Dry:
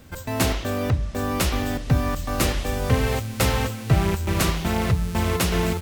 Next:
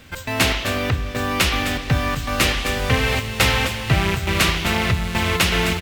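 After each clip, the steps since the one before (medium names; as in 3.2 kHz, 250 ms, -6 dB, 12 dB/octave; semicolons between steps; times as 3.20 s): peaking EQ 2.6 kHz +11 dB 2 oct; delay 258 ms -11 dB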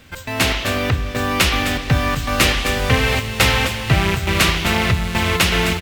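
level rider; trim -1 dB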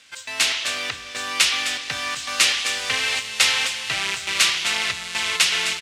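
frequency weighting ITU-R 468; trim -9 dB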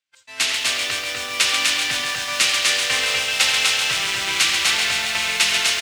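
loudspeakers at several distances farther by 29 m -11 dB, 85 m -3 dB; expander -25 dBFS; bit-crushed delay 136 ms, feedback 80%, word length 6-bit, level -6.5 dB; trim -1 dB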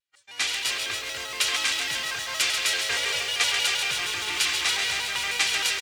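comb 2.3 ms, depth 48%; vibrato with a chosen wave square 6.4 Hz, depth 160 cents; trim -7 dB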